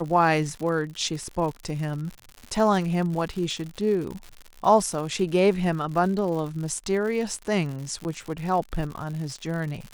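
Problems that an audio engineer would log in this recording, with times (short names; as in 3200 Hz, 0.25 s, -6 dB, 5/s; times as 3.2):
crackle 120/s -32 dBFS
8.04–8.05 gap 9.5 ms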